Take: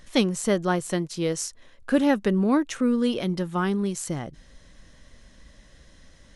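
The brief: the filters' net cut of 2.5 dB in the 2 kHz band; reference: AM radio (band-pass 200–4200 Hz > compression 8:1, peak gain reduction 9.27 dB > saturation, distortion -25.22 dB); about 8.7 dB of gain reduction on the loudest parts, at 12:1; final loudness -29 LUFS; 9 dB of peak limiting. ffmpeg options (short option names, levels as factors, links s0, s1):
-af "equalizer=f=2000:t=o:g=-3,acompressor=threshold=0.0631:ratio=12,alimiter=limit=0.0794:level=0:latency=1,highpass=200,lowpass=4200,acompressor=threshold=0.0178:ratio=8,asoftclip=threshold=0.0447,volume=3.98"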